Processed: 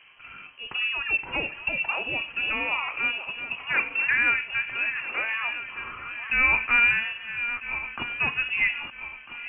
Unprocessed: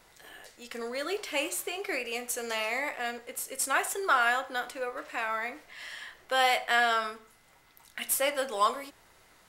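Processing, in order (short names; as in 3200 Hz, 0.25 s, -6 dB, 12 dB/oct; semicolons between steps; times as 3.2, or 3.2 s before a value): regenerating reverse delay 0.649 s, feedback 61%, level -12.5 dB; low-pass opened by the level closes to 2300 Hz, open at -24 dBFS; in parallel at -0.5 dB: compressor, threshold -38 dBFS, peak gain reduction 17 dB; on the sum: small resonant body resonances 210/430/700 Hz, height 10 dB, ringing for 30 ms; inverted band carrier 3100 Hz; gain -2.5 dB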